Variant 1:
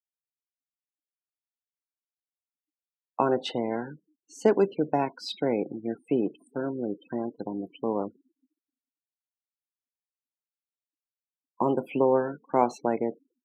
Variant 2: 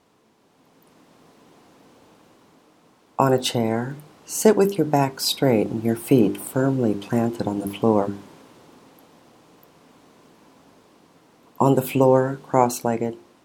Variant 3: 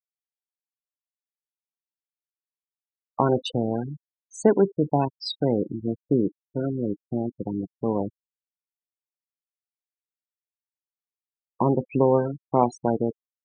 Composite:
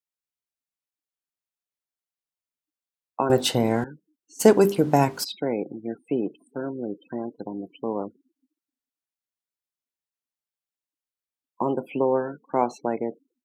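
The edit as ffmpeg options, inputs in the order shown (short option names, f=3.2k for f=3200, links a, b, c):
-filter_complex "[1:a]asplit=2[a][b];[0:a]asplit=3[c][d][e];[c]atrim=end=3.302[f];[a]atrim=start=3.298:end=3.842[g];[d]atrim=start=3.838:end=4.41[h];[b]atrim=start=4.39:end=5.25[i];[e]atrim=start=5.23[j];[f][g]acrossfade=d=0.004:c1=hsin:c2=hsin[k];[k][h]acrossfade=d=0.004:c1=hsin:c2=hsin[l];[l][i]acrossfade=d=0.02:c1=tri:c2=tri[m];[m][j]acrossfade=d=0.02:c1=tri:c2=tri"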